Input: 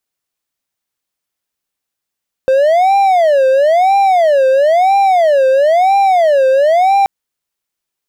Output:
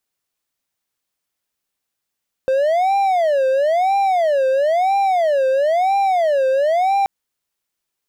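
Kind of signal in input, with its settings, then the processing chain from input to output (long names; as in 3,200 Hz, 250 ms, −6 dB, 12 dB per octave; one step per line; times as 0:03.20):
siren wail 524–795 Hz 1 per second triangle −5 dBFS 4.58 s
brickwall limiter −11.5 dBFS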